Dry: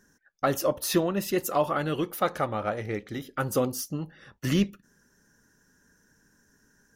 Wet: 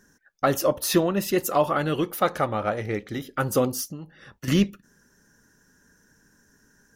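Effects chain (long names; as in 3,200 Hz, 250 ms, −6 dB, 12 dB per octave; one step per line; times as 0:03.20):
0:03.88–0:04.48: downward compressor 3 to 1, threshold −40 dBFS, peak gain reduction 11 dB
level +3.5 dB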